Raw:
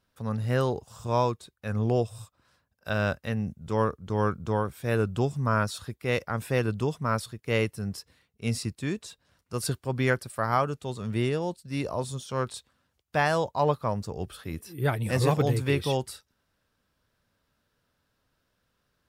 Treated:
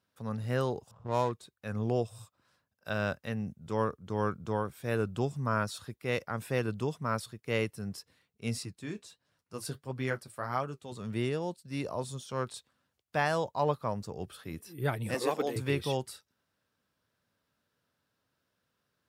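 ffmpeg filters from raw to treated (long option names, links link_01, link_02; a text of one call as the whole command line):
ffmpeg -i in.wav -filter_complex "[0:a]asettb=1/sr,asplit=3[link_01][link_02][link_03];[link_01]atrim=end=0.914[link_04];[link_02]atrim=start=0.91:end=1.32,asetpts=PTS-STARTPTS,afade=type=in:duration=0.004:curve=qsin,afade=type=out:start_time=0.406:duration=0.004:curve=qsin,adynamicsmooth=sensitivity=4.5:basefreq=630[link_05];[link_03]atrim=start=1.316[link_06];[link_04][link_05]acrossfade=duration=0.004:curve1=hsin:curve2=qsin[link_07];[link_07][link_06]acrossfade=duration=0.004:curve1=qsin:curve2=hsin,asettb=1/sr,asplit=3[link_08][link_09][link_10];[link_08]atrim=end=8.654[link_11];[link_09]atrim=start=8.65:end=10.92,asetpts=PTS-STARTPTS,afade=type=in:duration=0.004:curve=qsin,afade=type=out:start_time=2.266:duration=0.004:curve=qsin,flanger=delay=6.1:depth=7.9:regen=-46:speed=1.5:shape=triangular[link_12];[link_10]atrim=start=10.916[link_13];[link_11][link_12]acrossfade=duration=0.004:curve1=hsin:curve2=qsin[link_14];[link_14][link_13]acrossfade=duration=0.004:curve1=qsin:curve2=hsin,asettb=1/sr,asplit=3[link_15][link_16][link_17];[link_15]atrim=end=15.144[link_18];[link_16]atrim=start=15.14:end=15.56,asetpts=PTS-STARTPTS,afade=type=in:duration=0.004:curve=qsin,afade=type=out:start_time=0.416:duration=0.004:curve=qsin,highpass=frequency=250:width=0.5412,highpass=frequency=250:width=1.3066[link_19];[link_17]atrim=start=15.556[link_20];[link_18][link_19]acrossfade=duration=0.004:curve1=hsin:curve2=qsin[link_21];[link_21][link_20]acrossfade=duration=0.004:curve1=qsin:curve2=hsin,highpass=100,volume=-4.5dB" out.wav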